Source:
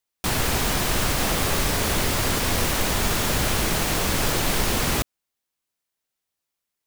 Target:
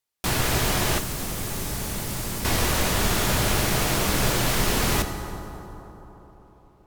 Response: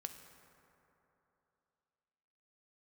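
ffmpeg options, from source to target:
-filter_complex "[1:a]atrim=start_sample=2205,asetrate=33075,aresample=44100[link_01];[0:a][link_01]afir=irnorm=-1:irlink=0,asettb=1/sr,asplit=3[link_02][link_03][link_04];[link_02]atrim=end=0.984[link_05];[link_03]atrim=start=0.98:end=2.45,asetpts=PTS-STARTPTS,afade=type=in:duration=0.004:curve=qsin,afade=type=out:start_time=1.466:duration=0.004:curve=qsin,acrossover=split=82|290|5900[link_06][link_07][link_08][link_09];[link_06]acompressor=threshold=-35dB:ratio=4[link_10];[link_07]acompressor=threshold=-36dB:ratio=4[link_11];[link_08]acompressor=threshold=-39dB:ratio=4[link_12];[link_09]acompressor=threshold=-35dB:ratio=4[link_13];[link_10][link_11][link_12][link_13]amix=inputs=4:normalize=0[link_14];[link_04]atrim=start=2.446[link_15];[link_05][link_14]acrossfade=duration=0.004:curve1=hsin:curve2=qsin[link_16];[link_16][link_15]acrossfade=duration=0.004:curve1=qsin:curve2=hsin,volume=2dB"

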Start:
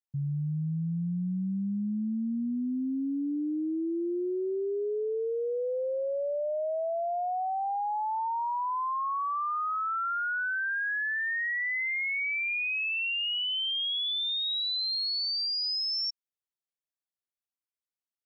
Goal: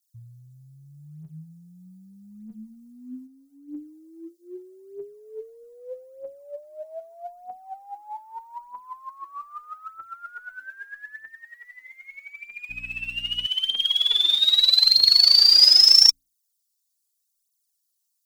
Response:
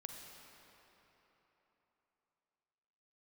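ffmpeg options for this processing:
-filter_complex "[0:a]asettb=1/sr,asplit=3[link_01][link_02][link_03];[link_01]atrim=end=11.284[link_04];[link_02]atrim=start=11.28:end=12.05,asetpts=PTS-STARTPTS,afade=type=in:duration=0.004:curve=qsin,afade=type=out:start_time=0.766:duration=0.004:curve=qsin,equalizer=frequency=1000:width_type=o:width=1:gain=-11,equalizer=frequency=2000:width_type=o:width=1:gain=-3,equalizer=frequency=4000:width_type=o:width=1:gain=7[link_05];[link_03]atrim=start=12.046[link_06];[link_04][link_05]acrossfade=duration=0.004:curve1=hsin:curve2=qsin[link_07];[link_07][link_06]acrossfade=duration=0.004:curve1=qsin:curve2=hsin,aexciter=amount=16:drive=7.5:freq=3500,bandreject=frequency=370:width=12,aphaser=in_gain=1:out_gain=1:delay=3.5:decay=0.76:speed=0.8:type=triangular,equalizer=frequency=86:width=2:gain=-6.5,bandreject=frequency=60:width_type=h:width=6,bandreject=frequency=120:width_type=h:width=6,bandreject=frequency=180:width_type=h:width=6,bandreject=frequency=240:width_type=h:width=6,bandreject=frequency=300:width_type=h:width=6,asplit=3[link_08][link_09][link_10];[link_08]afade=type=out:start_time=3.26:duration=0.02[link_11];[link_09]acompressor=threshold=-44dB:ratio=1.5,afade=type=in:start_time=3.26:duration=0.02,afade=type=out:start_time=3.67:duration=0.02[link_12];[link_10]afade=type=in:start_time=3.67:duration=0.02[link_13];[link_11][link_12][link_13]amix=inputs=3:normalize=0,asettb=1/sr,asplit=3[link_14][link_15][link_16];[link_14]atrim=end=12.694[link_17];[link_15]atrim=start=12.69:end=13.46,asetpts=PTS-STARTPTS,afade=type=in:duration=0.004:curve=qsin,afade=type=out:start_time=0.766:duration=0.004:curve=qsin,aeval=exprs='val(0)+0.0316*(sin(2*PI*60*n/s)+sin(2*PI*2*60*n/s)/2+sin(2*PI*3*60*n/s)/3+sin(2*PI*4*60*n/s)/4+sin(2*PI*5*60*n/s)/5)':channel_layout=same[link_18];[link_16]atrim=start=13.456[link_19];[link_17][link_18]acrossfade=duration=0.004:curve1=hsin:curve2=qsin[link_20];[link_20][link_19]acrossfade=duration=0.004:curve1=qsin:curve2=hsin,afreqshift=-25,volume=-13dB"

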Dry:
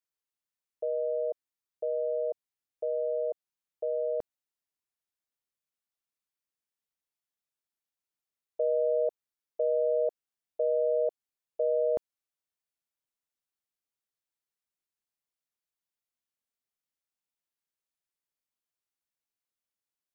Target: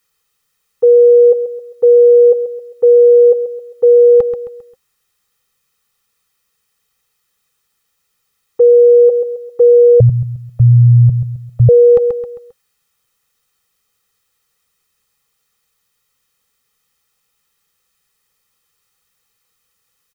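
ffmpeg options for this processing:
ffmpeg -i in.wav -filter_complex "[0:a]asuperstop=centerf=640:order=12:qfactor=2.6,aecho=1:1:133|266|399|532:0.251|0.098|0.0382|0.0149,asettb=1/sr,asplit=3[link_01][link_02][link_03];[link_01]atrim=end=10.004[link_04];[link_02]atrim=start=10:end=11.69,asetpts=PTS-STARTPTS,afade=type=in:duration=0.004:curve=qsin,afade=type=out:start_time=1.686:duration=0.004:curve=qsin,afreqshift=-360[link_05];[link_03]atrim=start=11.686[link_06];[link_04][link_05]acrossfade=duration=0.004:curve1=hsin:curve2=qsin[link_07];[link_07][link_06]acrossfade=duration=0.004:curve1=qsin:curve2=hsin,equalizer=frequency=490:width_type=o:width=2.7:gain=2.5,aecho=1:1:1.6:0.71,alimiter=level_in=24.5dB:limit=-1dB:release=50:level=0:latency=1,volume=-2dB" out.wav

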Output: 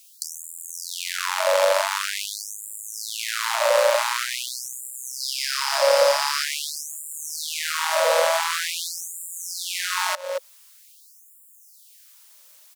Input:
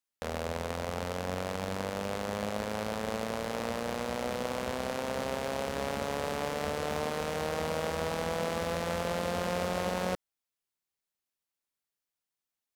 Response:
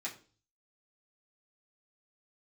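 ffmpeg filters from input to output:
-filter_complex "[0:a]asettb=1/sr,asplit=3[link_01][link_02][link_03];[link_01]atrim=end=5.204[link_04];[link_02]atrim=start=5.2:end=6.44,asetpts=PTS-STARTPTS,afade=type=in:duration=0.004:curve=qsin,afade=type=out:start_time=1.236:duration=0.004:curve=qsin,equalizer=frequency=5000:width=5.5:gain=9.5[link_05];[link_03]atrim=start=6.436[link_06];[link_04][link_05]acrossfade=duration=0.004:curve1=hsin:curve2=qsin[link_07];[link_07][link_06]acrossfade=duration=0.004:curve1=qsin:curve2=hsin,acrossover=split=670|2300[link_08][link_09][link_10];[link_10]crystalizer=i=2.5:c=0[link_11];[link_08][link_09][link_11]amix=inputs=3:normalize=0,asuperstop=centerf=740:order=4:qfactor=4.4,asplit=2[link_12][link_13];[link_13]adelay=227.4,volume=-25dB,highshelf=frequency=4000:gain=-5.12[link_14];[link_12][link_14]amix=inputs=2:normalize=0,acompressor=threshold=-34dB:ratio=6,asplit=2[link_15][link_16];[link_16]highpass=frequency=720:poles=1,volume=33dB,asoftclip=type=tanh:threshold=-2dB[link_17];[link_15][link_17]amix=inputs=2:normalize=0,lowpass=frequency=5600:poles=1,volume=-6dB,equalizer=frequency=540:width=1.8:gain=10.5,acrossover=split=170[link_18][link_19];[link_19]acompressor=threshold=-26dB:ratio=2[link_20];[link_18][link_20]amix=inputs=2:normalize=0,afftfilt=real='re*gte(b*sr/1024,490*pow(7100/490,0.5+0.5*sin(2*PI*0.46*pts/sr)))':imag='im*gte(b*sr/1024,490*pow(7100/490,0.5+0.5*sin(2*PI*0.46*pts/sr)))':win_size=1024:overlap=0.75,volume=5dB"

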